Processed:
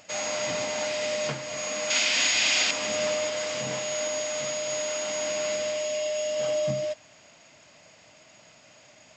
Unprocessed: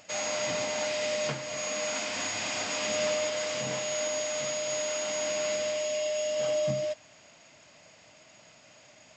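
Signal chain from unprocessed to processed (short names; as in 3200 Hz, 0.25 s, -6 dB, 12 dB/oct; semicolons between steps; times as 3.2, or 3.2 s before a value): 1.9–2.71 weighting filter D; gain +1.5 dB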